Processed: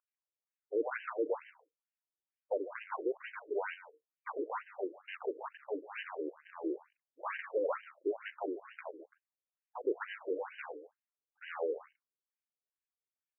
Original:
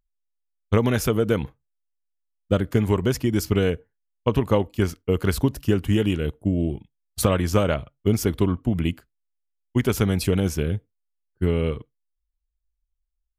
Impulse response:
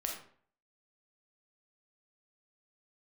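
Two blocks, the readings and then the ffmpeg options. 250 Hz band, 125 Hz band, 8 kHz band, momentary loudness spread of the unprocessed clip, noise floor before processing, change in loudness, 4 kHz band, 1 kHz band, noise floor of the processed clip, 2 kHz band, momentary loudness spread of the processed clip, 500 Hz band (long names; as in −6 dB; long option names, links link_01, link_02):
−21.5 dB, below −40 dB, below −40 dB, 7 LU, −78 dBFS, −16.5 dB, −22.5 dB, −9.5 dB, below −85 dBFS, −10.0 dB, 12 LU, −12.5 dB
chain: -filter_complex "[0:a]aeval=exprs='if(lt(val(0),0),0.447*val(0),val(0))':channel_layout=same,flanger=delay=0.6:depth=3.6:regen=-45:speed=0.33:shape=triangular,acrossover=split=230[link_01][link_02];[link_02]acrusher=bits=3:mode=log:mix=0:aa=0.000001[link_03];[link_01][link_03]amix=inputs=2:normalize=0,asoftclip=type=tanh:threshold=-30.5dB,asplit=2[link_04][link_05];[link_05]aecho=0:1:146:0.2[link_06];[link_04][link_06]amix=inputs=2:normalize=0,afftfilt=real='re*between(b*sr/1024,380*pow(2200/380,0.5+0.5*sin(2*PI*2.2*pts/sr))/1.41,380*pow(2200/380,0.5+0.5*sin(2*PI*2.2*pts/sr))*1.41)':imag='im*between(b*sr/1024,380*pow(2200/380,0.5+0.5*sin(2*PI*2.2*pts/sr))/1.41,380*pow(2200/380,0.5+0.5*sin(2*PI*2.2*pts/sr))*1.41)':win_size=1024:overlap=0.75,volume=6dB"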